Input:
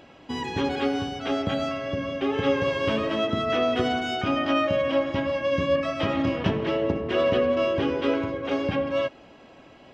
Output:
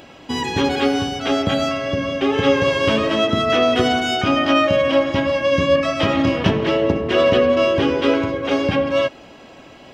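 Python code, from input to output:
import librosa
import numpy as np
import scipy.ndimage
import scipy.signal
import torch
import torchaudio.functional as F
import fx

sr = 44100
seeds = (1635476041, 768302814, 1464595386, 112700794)

y = fx.high_shelf(x, sr, hz=5100.0, db=9.5)
y = y * librosa.db_to_amplitude(7.0)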